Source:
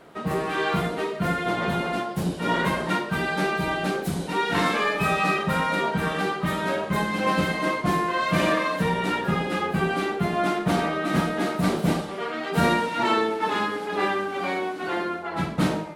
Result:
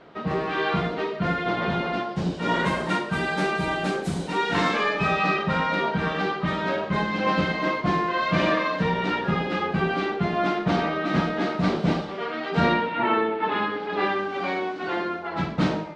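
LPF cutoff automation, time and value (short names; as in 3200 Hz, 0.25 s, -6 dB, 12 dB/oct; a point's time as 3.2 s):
LPF 24 dB/oct
2 s 5100 Hz
2.77 s 8800 Hz
4.18 s 8800 Hz
5.21 s 5300 Hz
12.55 s 5300 Hz
13.09 s 2700 Hz
14.33 s 5700 Hz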